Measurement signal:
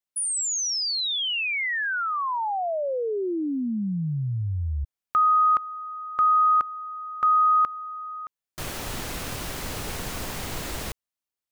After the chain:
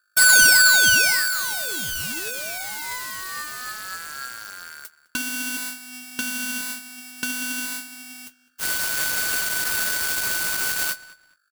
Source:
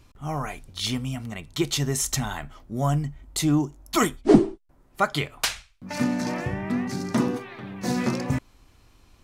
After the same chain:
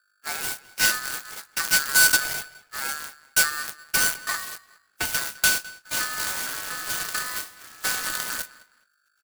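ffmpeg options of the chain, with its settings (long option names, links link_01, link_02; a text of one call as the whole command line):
ffmpeg -i in.wav -filter_complex "[0:a]aeval=exprs='val(0)+0.5*0.0531*sgn(val(0))':channel_layout=same,highpass=frequency=120:poles=1,agate=range=-59dB:threshold=-27dB:ratio=16:release=280:detection=peak,acrossover=split=5500[link_01][link_02];[link_01]acompressor=threshold=-31dB:ratio=4:attack=94:release=658:detection=peak[link_03];[link_03][link_02]amix=inputs=2:normalize=0,aeval=exprs='val(0)+0.000794*(sin(2*PI*50*n/s)+sin(2*PI*2*50*n/s)/2+sin(2*PI*3*50*n/s)/3+sin(2*PI*4*50*n/s)/4+sin(2*PI*5*50*n/s)/5)':channel_layout=same,aexciter=amount=2.3:drive=9.3:freq=3400,aeval=exprs='0.944*(cos(1*acos(clip(val(0)/0.944,-1,1)))-cos(1*PI/2))+0.237*(cos(4*acos(clip(val(0)/0.944,-1,1)))-cos(4*PI/2))+0.0841*(cos(5*acos(clip(val(0)/0.944,-1,1)))-cos(5*PI/2))+0.237*(cos(6*acos(clip(val(0)/0.944,-1,1)))-cos(6*PI/2))+0.299*(cos(8*acos(clip(val(0)/0.944,-1,1)))-cos(8*PI/2))':channel_layout=same,flanger=delay=3.6:depth=9.2:regen=57:speed=0.42:shape=sinusoidal,asplit=2[link_04][link_05];[link_05]adelay=208,lowpass=frequency=3100:poles=1,volume=-18dB,asplit=2[link_06][link_07];[link_07]adelay=208,lowpass=frequency=3100:poles=1,volume=0.28[link_08];[link_06][link_08]amix=inputs=2:normalize=0[link_09];[link_04][link_09]amix=inputs=2:normalize=0,aeval=exprs='val(0)*sgn(sin(2*PI*1500*n/s))':channel_layout=same,volume=-4.5dB" out.wav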